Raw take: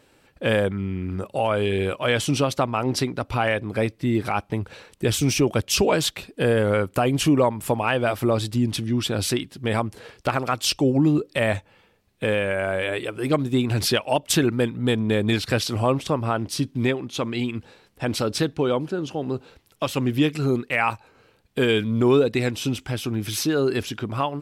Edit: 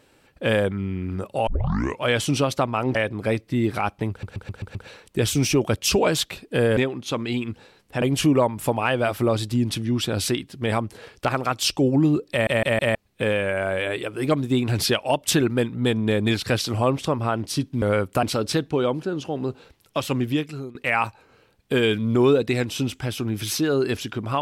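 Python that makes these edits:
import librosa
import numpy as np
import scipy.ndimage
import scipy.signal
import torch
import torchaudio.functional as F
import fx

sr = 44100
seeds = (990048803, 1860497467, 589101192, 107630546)

y = fx.edit(x, sr, fx.tape_start(start_s=1.47, length_s=0.56),
    fx.cut(start_s=2.95, length_s=0.51),
    fx.stutter(start_s=4.61, slice_s=0.13, count=6),
    fx.swap(start_s=6.63, length_s=0.41, other_s=16.84, other_length_s=1.25),
    fx.stutter_over(start_s=11.33, slice_s=0.16, count=4),
    fx.fade_out_to(start_s=20.0, length_s=0.61, floor_db=-23.0), tone=tone)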